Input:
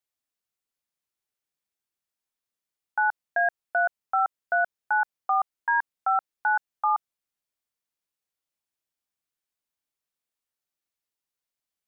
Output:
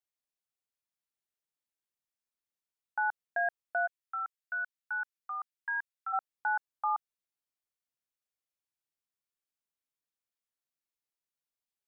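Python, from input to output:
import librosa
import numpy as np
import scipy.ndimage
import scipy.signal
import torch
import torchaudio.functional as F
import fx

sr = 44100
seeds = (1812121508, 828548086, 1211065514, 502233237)

y = fx.highpass(x, sr, hz=1300.0, slope=24, at=(3.86, 6.12), fade=0.02)
y = y * librosa.db_to_amplitude(-7.0)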